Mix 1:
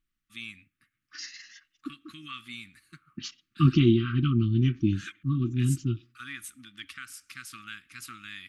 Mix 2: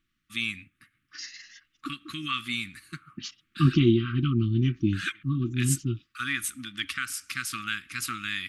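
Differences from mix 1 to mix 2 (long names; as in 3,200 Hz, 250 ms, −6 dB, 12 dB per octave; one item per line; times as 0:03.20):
first voice +10.5 dB
reverb: off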